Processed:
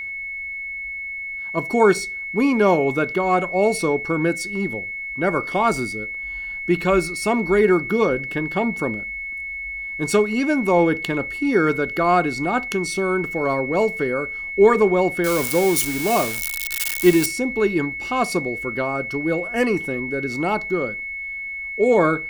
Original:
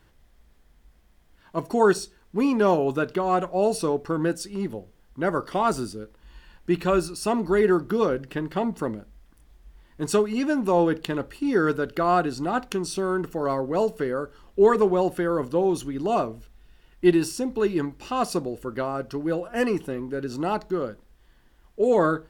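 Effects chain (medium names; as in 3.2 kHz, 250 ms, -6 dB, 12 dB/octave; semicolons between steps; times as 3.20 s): 15.24–17.26 s: zero-crossing glitches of -17 dBFS; whistle 2.2 kHz -31 dBFS; trim +3.5 dB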